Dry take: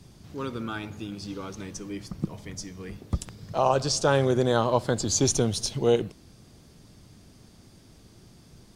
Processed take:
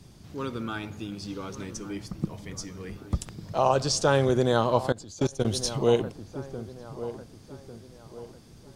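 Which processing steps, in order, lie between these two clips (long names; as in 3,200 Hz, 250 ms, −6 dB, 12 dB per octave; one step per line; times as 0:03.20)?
delay with a low-pass on its return 1,148 ms, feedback 39%, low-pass 1,600 Hz, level −13 dB
0:04.92–0:05.45: output level in coarse steps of 22 dB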